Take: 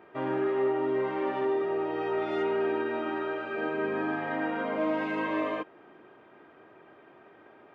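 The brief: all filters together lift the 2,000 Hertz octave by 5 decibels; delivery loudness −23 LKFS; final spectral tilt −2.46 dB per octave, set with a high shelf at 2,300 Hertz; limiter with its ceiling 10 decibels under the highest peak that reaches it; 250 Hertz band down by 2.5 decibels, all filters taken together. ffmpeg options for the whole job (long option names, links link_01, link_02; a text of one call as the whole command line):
ffmpeg -i in.wav -af "equalizer=frequency=250:width_type=o:gain=-4,equalizer=frequency=2000:width_type=o:gain=3.5,highshelf=frequency=2300:gain=6.5,volume=13dB,alimiter=limit=-15.5dB:level=0:latency=1" out.wav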